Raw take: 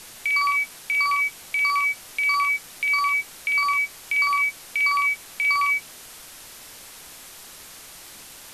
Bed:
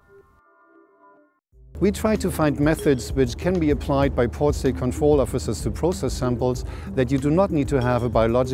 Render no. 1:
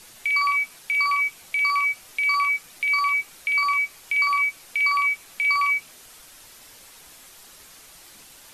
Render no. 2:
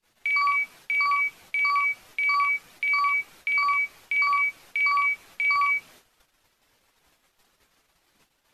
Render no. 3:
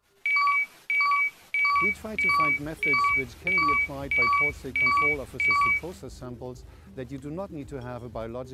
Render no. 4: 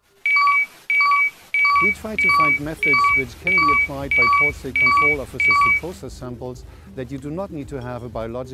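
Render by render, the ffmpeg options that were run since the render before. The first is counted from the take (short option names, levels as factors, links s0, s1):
-af "afftdn=nr=6:nf=-44"
-af "equalizer=f=9800:w=0.46:g=-11,agate=range=0.0355:threshold=0.00316:ratio=16:detection=peak"
-filter_complex "[1:a]volume=0.158[s0];[0:a][s0]amix=inputs=2:normalize=0"
-af "volume=2.24"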